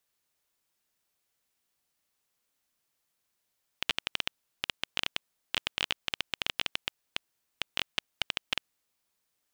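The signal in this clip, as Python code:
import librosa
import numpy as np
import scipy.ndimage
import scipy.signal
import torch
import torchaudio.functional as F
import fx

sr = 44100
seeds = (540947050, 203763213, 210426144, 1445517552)

y = fx.geiger_clicks(sr, seeds[0], length_s=4.8, per_s=11.0, level_db=-9.5)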